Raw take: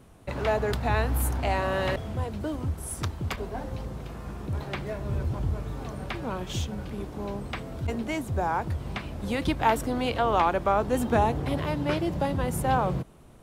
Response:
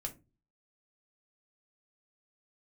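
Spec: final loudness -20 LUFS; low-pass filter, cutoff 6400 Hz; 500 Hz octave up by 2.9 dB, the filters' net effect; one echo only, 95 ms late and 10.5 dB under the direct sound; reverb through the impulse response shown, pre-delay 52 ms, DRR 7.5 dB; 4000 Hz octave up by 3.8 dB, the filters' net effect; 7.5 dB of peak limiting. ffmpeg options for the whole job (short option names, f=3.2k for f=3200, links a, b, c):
-filter_complex "[0:a]lowpass=6.4k,equalizer=f=500:t=o:g=3.5,equalizer=f=4k:t=o:g=5.5,alimiter=limit=-17dB:level=0:latency=1,aecho=1:1:95:0.299,asplit=2[a][b];[1:a]atrim=start_sample=2205,adelay=52[c];[b][c]afir=irnorm=-1:irlink=0,volume=-6.5dB[d];[a][d]amix=inputs=2:normalize=0,volume=8dB"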